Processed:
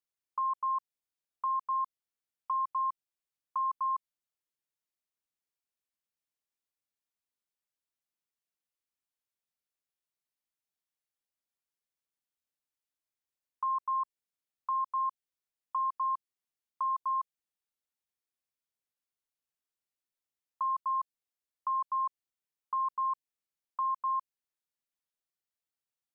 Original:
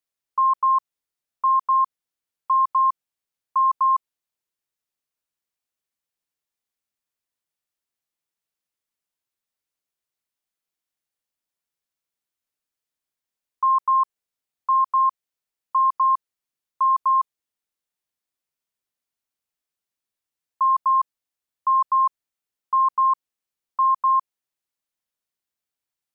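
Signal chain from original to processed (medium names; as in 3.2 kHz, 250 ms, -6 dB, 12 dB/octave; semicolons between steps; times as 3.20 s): dynamic bell 1.1 kHz, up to -5 dB, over -29 dBFS, Q 0.86; trim -7.5 dB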